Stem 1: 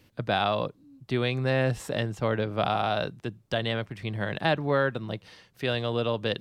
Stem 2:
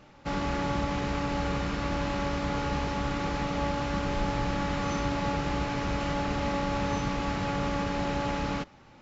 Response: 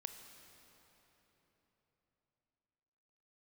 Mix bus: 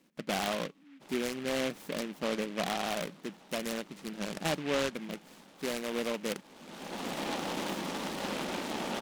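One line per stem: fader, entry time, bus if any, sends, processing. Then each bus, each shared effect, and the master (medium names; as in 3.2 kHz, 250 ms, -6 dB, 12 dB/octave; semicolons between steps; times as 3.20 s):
-5.5 dB, 0.00 s, no send, bass shelf 290 Hz +9.5 dB; feedback comb 280 Hz, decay 0.5 s, harmonics all, mix 30%
-5.0 dB, 0.75 s, no send, spectral gate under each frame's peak -30 dB strong; whisper effect; auto duck -21 dB, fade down 1.20 s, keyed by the first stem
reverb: none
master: brick-wall FIR high-pass 160 Hz; delay time shaken by noise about 2 kHz, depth 0.13 ms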